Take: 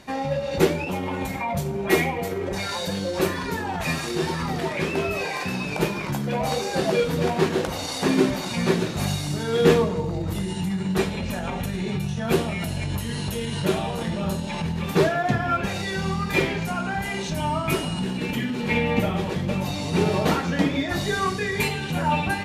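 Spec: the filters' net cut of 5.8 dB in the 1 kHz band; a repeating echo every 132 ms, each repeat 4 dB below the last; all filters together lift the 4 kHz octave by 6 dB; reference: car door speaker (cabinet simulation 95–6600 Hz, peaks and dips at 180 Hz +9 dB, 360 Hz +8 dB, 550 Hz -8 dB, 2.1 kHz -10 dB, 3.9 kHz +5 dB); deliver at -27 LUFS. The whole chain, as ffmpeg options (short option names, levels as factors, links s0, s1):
-af "highpass=95,equalizer=f=180:t=q:w=4:g=9,equalizer=f=360:t=q:w=4:g=8,equalizer=f=550:t=q:w=4:g=-8,equalizer=f=2100:t=q:w=4:g=-10,equalizer=f=3900:t=q:w=4:g=5,lowpass=f=6600:w=0.5412,lowpass=f=6600:w=1.3066,equalizer=f=1000:t=o:g=-7,equalizer=f=4000:t=o:g=5,aecho=1:1:132|264|396|528|660|792|924|1056|1188:0.631|0.398|0.25|0.158|0.0994|0.0626|0.0394|0.0249|0.0157,volume=0.422"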